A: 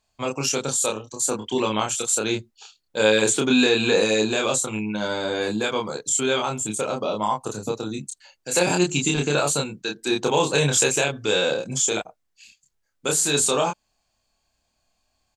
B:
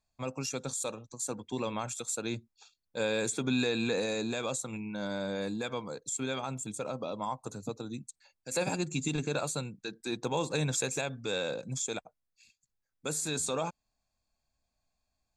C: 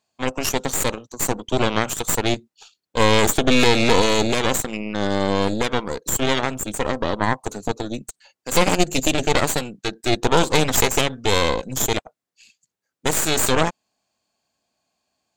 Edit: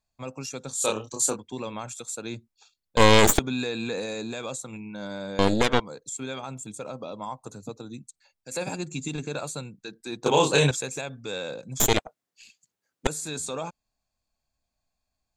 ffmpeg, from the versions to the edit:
-filter_complex "[0:a]asplit=2[s0][s1];[2:a]asplit=3[s2][s3][s4];[1:a]asplit=6[s5][s6][s7][s8][s9][s10];[s5]atrim=end=0.89[s11];[s0]atrim=start=0.73:end=1.41[s12];[s6]atrim=start=1.25:end=2.972[s13];[s2]atrim=start=2.968:end=3.392[s14];[s7]atrim=start=3.388:end=5.392[s15];[s3]atrim=start=5.388:end=5.802[s16];[s8]atrim=start=5.798:end=10.262[s17];[s1]atrim=start=10.258:end=10.712[s18];[s9]atrim=start=10.708:end=11.802[s19];[s4]atrim=start=11.798:end=13.072[s20];[s10]atrim=start=13.068[s21];[s11][s12]acrossfade=d=0.16:c1=tri:c2=tri[s22];[s22][s13]acrossfade=d=0.16:c1=tri:c2=tri[s23];[s23][s14]acrossfade=d=0.004:c1=hsin:c2=hsin[s24];[s24][s15]acrossfade=d=0.004:c1=hsin:c2=hsin[s25];[s25][s16]acrossfade=d=0.004:c1=hsin:c2=hsin[s26];[s26][s17]acrossfade=d=0.004:c1=hsin:c2=hsin[s27];[s27][s18]acrossfade=d=0.004:c1=hsin:c2=hsin[s28];[s28][s19]acrossfade=d=0.004:c1=hsin:c2=hsin[s29];[s29][s20]acrossfade=d=0.004:c1=hsin:c2=hsin[s30];[s30][s21]acrossfade=d=0.004:c1=hsin:c2=hsin"

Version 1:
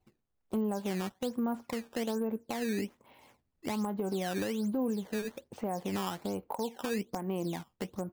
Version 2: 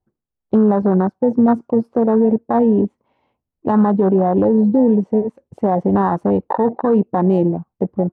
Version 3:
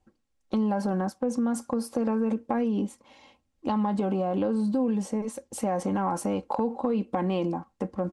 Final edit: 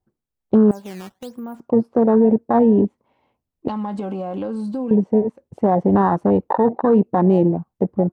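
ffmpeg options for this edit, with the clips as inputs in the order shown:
-filter_complex "[1:a]asplit=3[s0][s1][s2];[s0]atrim=end=0.712[s3];[0:a]atrim=start=0.708:end=1.602[s4];[s1]atrim=start=1.598:end=3.682[s5];[2:a]atrim=start=3.678:end=4.912[s6];[s2]atrim=start=4.908[s7];[s3][s4]acrossfade=d=0.004:c1=hsin:c2=hsin[s8];[s8][s5]acrossfade=d=0.004:c1=hsin:c2=hsin[s9];[s9][s6]acrossfade=d=0.004:c1=hsin:c2=hsin[s10];[s10][s7]acrossfade=d=0.004:c1=hsin:c2=hsin"

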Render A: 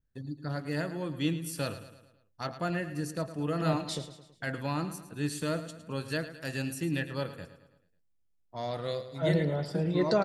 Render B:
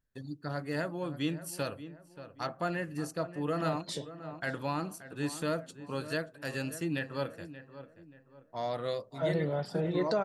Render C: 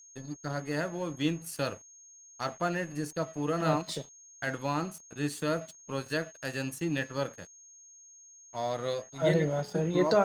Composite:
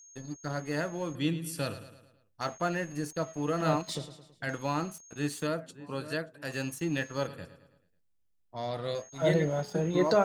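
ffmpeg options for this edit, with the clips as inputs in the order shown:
-filter_complex "[0:a]asplit=3[s0][s1][s2];[2:a]asplit=5[s3][s4][s5][s6][s7];[s3]atrim=end=1.152[s8];[s0]atrim=start=1.148:end=2.412[s9];[s4]atrim=start=2.408:end=3.952[s10];[s1]atrim=start=3.948:end=4.492[s11];[s5]atrim=start=4.488:end=5.472[s12];[1:a]atrim=start=5.468:end=6.522[s13];[s6]atrim=start=6.518:end=7.272[s14];[s2]atrim=start=7.268:end=8.952[s15];[s7]atrim=start=8.948[s16];[s8][s9]acrossfade=d=0.004:c1=hsin:c2=hsin[s17];[s17][s10]acrossfade=d=0.004:c1=hsin:c2=hsin[s18];[s18][s11]acrossfade=d=0.004:c1=hsin:c2=hsin[s19];[s19][s12]acrossfade=d=0.004:c1=hsin:c2=hsin[s20];[s20][s13]acrossfade=d=0.004:c1=hsin:c2=hsin[s21];[s21][s14]acrossfade=d=0.004:c1=hsin:c2=hsin[s22];[s22][s15]acrossfade=d=0.004:c1=hsin:c2=hsin[s23];[s23][s16]acrossfade=d=0.004:c1=hsin:c2=hsin"

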